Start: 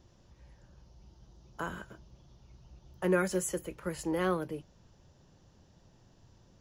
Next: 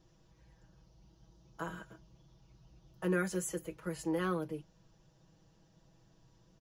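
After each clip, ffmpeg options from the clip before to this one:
-af "aecho=1:1:6.2:0.78,volume=-6dB"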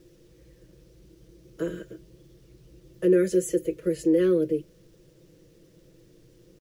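-filter_complex "[0:a]firequalizer=gain_entry='entry(220,0);entry(360,12);entry(540,8);entry(780,-22);entry(1800,-2)':delay=0.05:min_phase=1,asplit=2[a][b];[b]alimiter=limit=-23.5dB:level=0:latency=1:release=78,volume=2dB[c];[a][c]amix=inputs=2:normalize=0,acrusher=bits=10:mix=0:aa=0.000001"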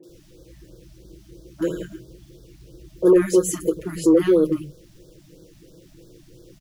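-filter_complex "[0:a]asoftclip=type=tanh:threshold=-15dB,acrossover=split=170|1200[a][b][c];[c]adelay=30[d];[a]adelay=90[e];[e][b][d]amix=inputs=3:normalize=0,afftfilt=real='re*(1-between(b*sr/1024,410*pow(2400/410,0.5+0.5*sin(2*PI*3*pts/sr))/1.41,410*pow(2400/410,0.5+0.5*sin(2*PI*3*pts/sr))*1.41))':imag='im*(1-between(b*sr/1024,410*pow(2400/410,0.5+0.5*sin(2*PI*3*pts/sr))/1.41,410*pow(2400/410,0.5+0.5*sin(2*PI*3*pts/sr))*1.41))':win_size=1024:overlap=0.75,volume=8.5dB"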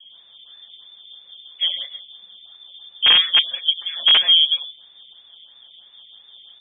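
-af "aeval=exprs='(mod(2.37*val(0)+1,2)-1)/2.37':c=same,lowpass=f=3.1k:t=q:w=0.5098,lowpass=f=3.1k:t=q:w=0.6013,lowpass=f=3.1k:t=q:w=0.9,lowpass=f=3.1k:t=q:w=2.563,afreqshift=-3600,apsyclip=8dB,volume=-6dB"

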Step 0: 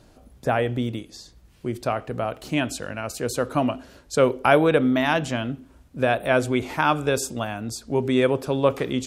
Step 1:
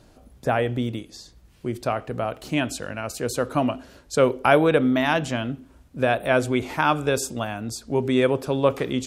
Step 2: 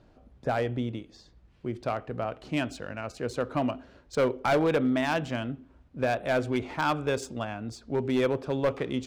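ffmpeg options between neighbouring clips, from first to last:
-af anull
-af "adynamicsmooth=sensitivity=2.5:basefreq=3.7k,volume=14dB,asoftclip=hard,volume=-14dB,volume=-5dB"

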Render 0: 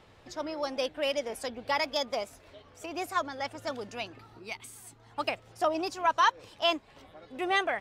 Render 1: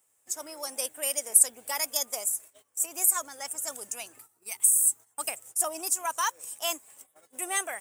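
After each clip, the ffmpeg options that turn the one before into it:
-af "aemphasis=mode=production:type=riaa,agate=range=-16dB:threshold=-50dB:ratio=16:detection=peak,highshelf=f=6k:t=q:w=3:g=13,volume=-5.5dB"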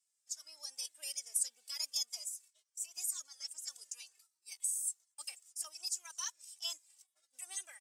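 -filter_complex "[0:a]bandpass=f=4.9k:t=q:w=2.7:csg=0,asplit=2[a][b];[b]adelay=2.3,afreqshift=-2.4[c];[a][c]amix=inputs=2:normalize=1,volume=1.5dB"

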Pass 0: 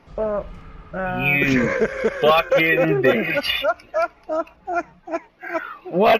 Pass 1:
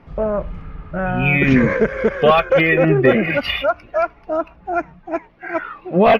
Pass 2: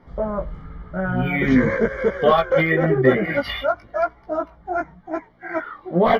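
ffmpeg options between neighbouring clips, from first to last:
-af "bass=f=250:g=6,treble=f=4k:g=-13,volume=2.5dB"
-af "flanger=delay=15.5:depth=4:speed=0.96,asuperstop=centerf=2600:order=4:qfactor=3.7"

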